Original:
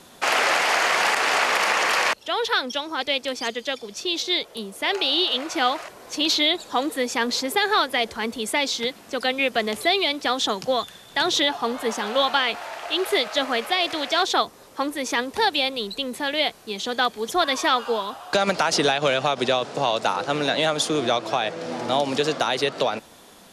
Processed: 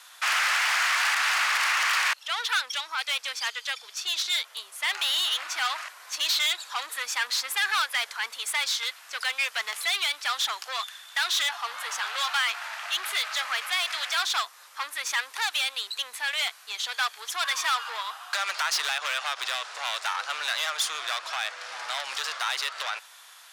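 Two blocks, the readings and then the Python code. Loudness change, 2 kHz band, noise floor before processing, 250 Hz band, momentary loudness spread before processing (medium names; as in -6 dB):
-4.0 dB, -1.5 dB, -48 dBFS, under -35 dB, 8 LU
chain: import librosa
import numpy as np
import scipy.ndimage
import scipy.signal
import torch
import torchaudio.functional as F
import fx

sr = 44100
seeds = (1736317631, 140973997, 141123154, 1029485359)

y = fx.tube_stage(x, sr, drive_db=23.0, bias=0.4)
y = fx.ladder_highpass(y, sr, hz=1000.0, resonance_pct=25)
y = y * librosa.db_to_amplitude(8.0)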